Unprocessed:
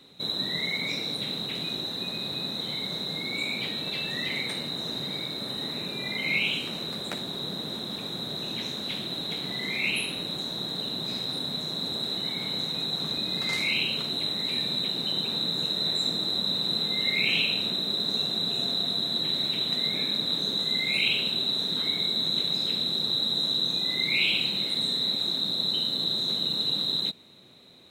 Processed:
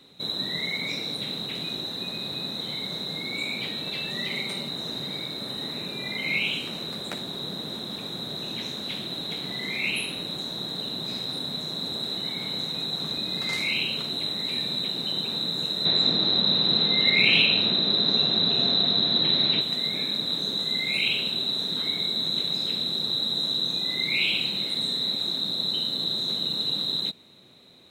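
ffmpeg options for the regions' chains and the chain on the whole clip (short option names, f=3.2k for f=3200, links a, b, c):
-filter_complex "[0:a]asettb=1/sr,asplit=3[a][b][c];[a]atrim=end=4.114[d];[b]atrim=start=4.11:end=4.69,asetpts=PTS-STARTPTS,afade=t=in:d=0.004:c=qsin,afade=t=out:st=0.576:d=0.004:c=qsin,bandreject=f=1.7k:w=5.6,aecho=1:1:5.1:0.42,atrim=end_sample=25578[e];[c]atrim=start=4.686[f];[d][e]acrossfade=d=0.004:c1=hsin:c2=qsin[g];[g][f]acrossfade=d=0.004:c1=qsin:c2=hsin,asettb=1/sr,asplit=3[h][i][j];[h]atrim=end=15.854[k];[i]atrim=start=15.85:end=19.61,asetpts=PTS-STARTPTS,afade=t=in:d=0.004:c=qsin,afade=t=out:st=3.756:d=0.004:c=qsin,lowpass=f=5k:w=0.5412,lowpass=f=5k:w=1.3066,acontrast=53[l];[j]atrim=start=19.606[m];[k][l]acrossfade=d=0.004:c1=hsin:c2=qsin[n];[n][m]acrossfade=d=0.004:c1=qsin:c2=hsin"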